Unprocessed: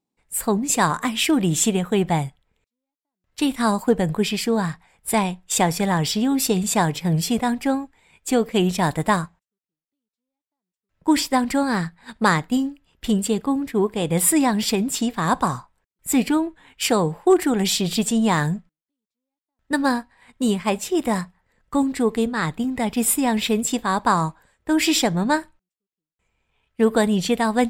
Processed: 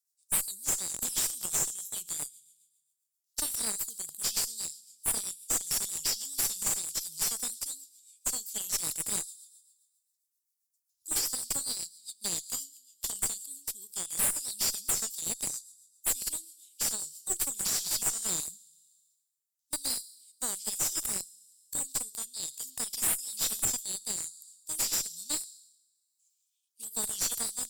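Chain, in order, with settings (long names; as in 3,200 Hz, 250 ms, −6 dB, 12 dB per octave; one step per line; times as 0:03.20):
inverse Chebyshev high-pass filter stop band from 2,000 Hz, stop band 50 dB
downward compressor 12 to 1, threshold −29 dBFS, peak gain reduction 15.5 dB
four-comb reverb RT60 1.3 s, combs from 27 ms, DRR 17 dB
rotating-speaker cabinet horn 7.5 Hz, later 1.1 Hz, at 0:17.28
0:09.20–0:11.22: comb filter 2.5 ms, depth 92%
brickwall limiter −28 dBFS, peak gain reduction 11 dB
high-shelf EQ 6,900 Hz +10.5 dB
asymmetric clip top −39 dBFS
level +7.5 dB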